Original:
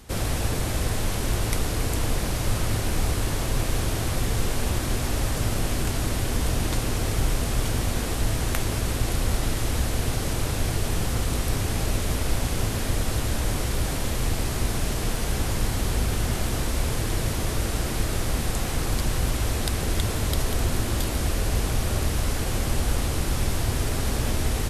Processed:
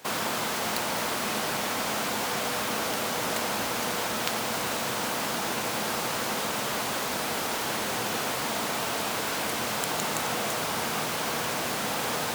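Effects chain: high-pass 140 Hz 12 dB/octave; tone controls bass -7 dB, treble -4 dB; speed mistake 7.5 ips tape played at 15 ips; trim +3 dB

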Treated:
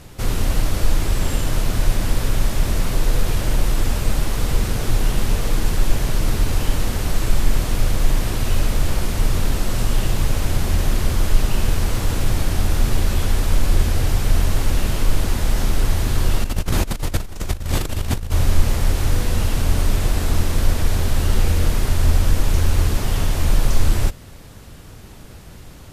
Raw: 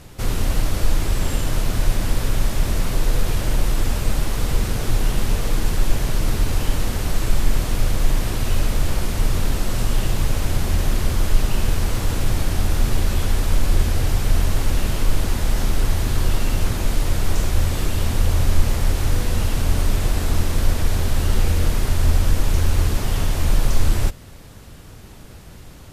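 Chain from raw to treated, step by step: 16.44–18.32 s: compressor with a negative ratio -21 dBFS, ratio -0.5; trim +1 dB

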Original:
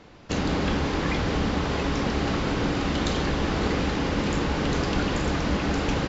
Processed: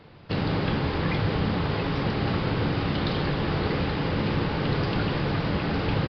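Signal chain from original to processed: on a send at -19 dB: reverberation RT60 0.30 s, pre-delay 3 ms; on the sum: resampled via 11.025 kHz; trim -1.5 dB

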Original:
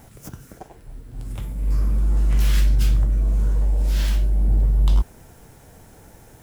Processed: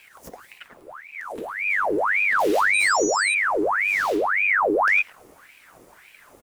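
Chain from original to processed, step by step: speakerphone echo 110 ms, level -9 dB; 2.73–3.33 s: whistle 6.3 kHz -22 dBFS; ring modulator with a swept carrier 1.4 kHz, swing 75%, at 1.8 Hz; trim -1.5 dB

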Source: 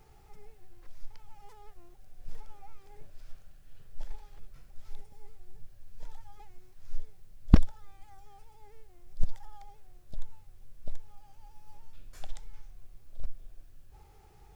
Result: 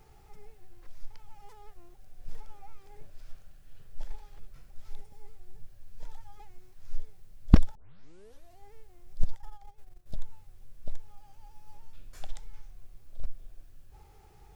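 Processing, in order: 7.75 s: tape start 0.93 s; 9.33–10.16 s: transient shaper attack +4 dB, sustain -10 dB; trim +1 dB

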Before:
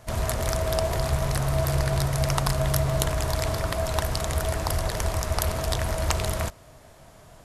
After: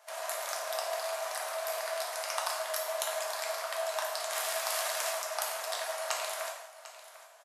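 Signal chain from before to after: 4.30–5.09 s: formants flattened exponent 0.6; elliptic high-pass 610 Hz, stop band 80 dB; delay 747 ms -15.5 dB; gated-style reverb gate 240 ms falling, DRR -1 dB; trim -7.5 dB

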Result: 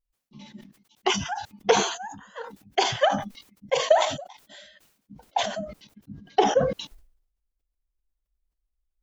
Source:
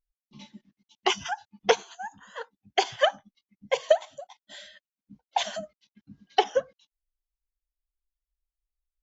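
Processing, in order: tilt shelf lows +3 dB, about 810 Hz, from 5.23 s lows +7.5 dB; decay stretcher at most 83 dB/s

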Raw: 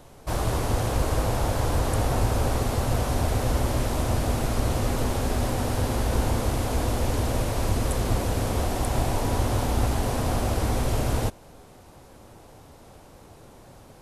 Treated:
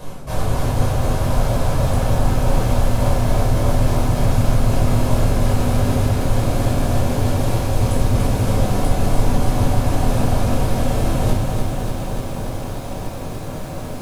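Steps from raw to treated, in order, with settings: reverse; compression 8:1, threshold -35 dBFS, peak gain reduction 17 dB; reverse; simulated room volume 700 m³, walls furnished, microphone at 5.4 m; bit-crushed delay 292 ms, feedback 80%, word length 9-bit, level -6 dB; trim +8 dB

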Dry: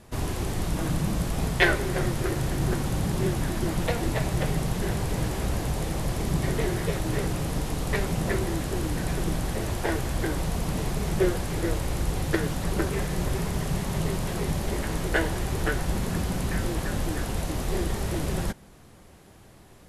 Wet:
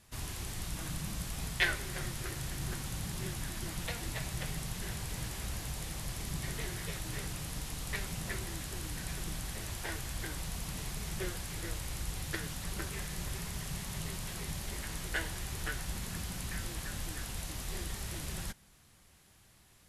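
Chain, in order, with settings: amplifier tone stack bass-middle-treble 5-5-5; trim +2.5 dB

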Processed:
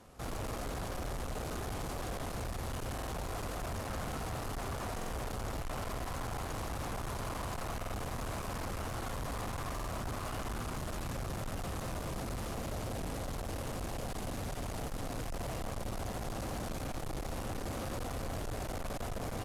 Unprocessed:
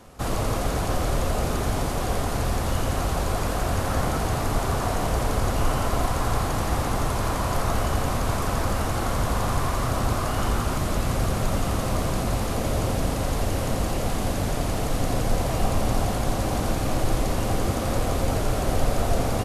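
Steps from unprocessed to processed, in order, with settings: valve stage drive 28 dB, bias 0.45; buffer glitch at 2.95/4.96/7.79/9.75 s, samples 2048, times 2; trim -7 dB

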